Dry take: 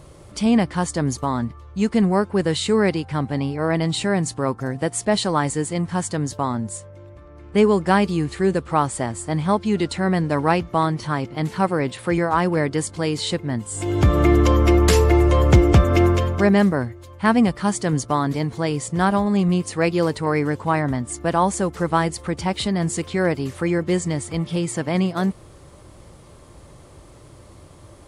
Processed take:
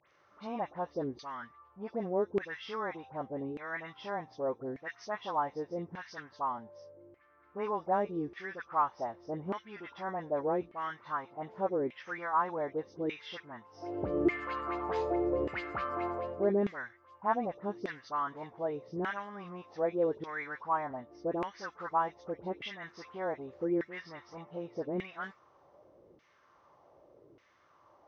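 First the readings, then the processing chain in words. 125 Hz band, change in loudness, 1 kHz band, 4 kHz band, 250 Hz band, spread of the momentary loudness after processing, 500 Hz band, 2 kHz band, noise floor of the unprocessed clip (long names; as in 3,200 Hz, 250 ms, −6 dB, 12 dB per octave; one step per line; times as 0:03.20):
−27.0 dB, −15.5 dB, −11.0 dB, −21.0 dB, −18.5 dB, 13 LU, −12.5 dB, −13.5 dB, −46 dBFS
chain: hearing-aid frequency compression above 2,300 Hz 1.5 to 1
all-pass dispersion highs, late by 74 ms, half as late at 1,900 Hz
auto-filter band-pass saw down 0.84 Hz 350–2,200 Hz
level −6 dB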